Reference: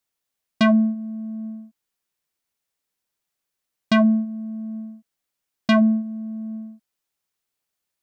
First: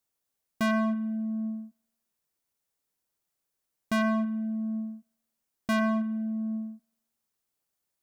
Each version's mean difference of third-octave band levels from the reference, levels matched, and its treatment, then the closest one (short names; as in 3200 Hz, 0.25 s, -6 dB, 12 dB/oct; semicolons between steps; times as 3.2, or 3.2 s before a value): 4.0 dB: bell 2700 Hz -5.5 dB 2.1 oct; hard clip -25.5 dBFS, distortion -5 dB; dynamic EQ 1400 Hz, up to +8 dB, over -48 dBFS, Q 0.94; spring tank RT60 1 s, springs 44 ms, chirp 30 ms, DRR 18 dB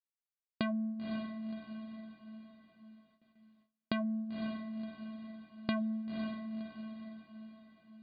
9.5 dB: compressor 10:1, threshold -30 dBFS, peak gain reduction 16.5 dB; brick-wall FIR low-pass 4900 Hz; diffused feedback echo 0.528 s, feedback 46%, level -5.5 dB; gate with hold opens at -57 dBFS; gain -3 dB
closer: first